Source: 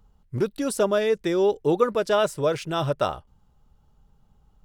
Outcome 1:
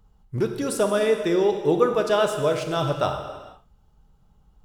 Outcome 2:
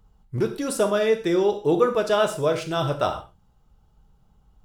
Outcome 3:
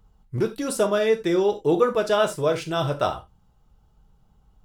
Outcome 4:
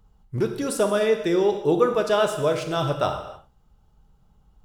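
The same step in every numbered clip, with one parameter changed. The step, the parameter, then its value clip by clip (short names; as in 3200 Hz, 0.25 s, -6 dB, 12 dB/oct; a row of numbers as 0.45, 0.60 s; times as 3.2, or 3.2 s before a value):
non-linear reverb, gate: 0.51, 0.17, 0.11, 0.33 s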